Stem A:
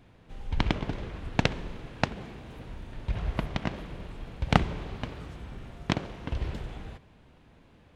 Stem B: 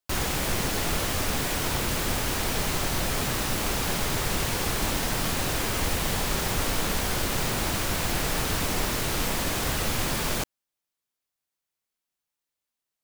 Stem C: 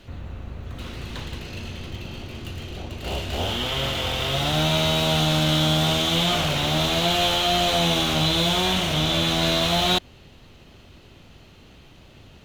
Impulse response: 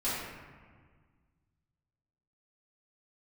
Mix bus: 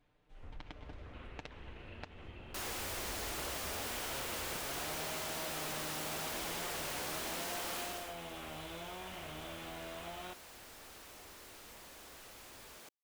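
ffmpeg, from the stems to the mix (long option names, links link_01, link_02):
-filter_complex "[0:a]aecho=1:1:6.7:0.71,volume=-15.5dB[link_01];[1:a]highpass=340,asoftclip=type=hard:threshold=-31.5dB,adelay=2450,volume=-7.5dB,afade=type=out:start_time=7.79:duration=0.35:silence=0.223872[link_02];[2:a]lowpass=frequency=2600:width=0.5412,lowpass=frequency=2600:width=1.3066,adelay=350,volume=-12dB[link_03];[link_01][link_03]amix=inputs=2:normalize=0,equalizer=frequency=150:width=0.88:gain=-9,acompressor=threshold=-43dB:ratio=10,volume=0dB[link_04];[link_02][link_04]amix=inputs=2:normalize=0"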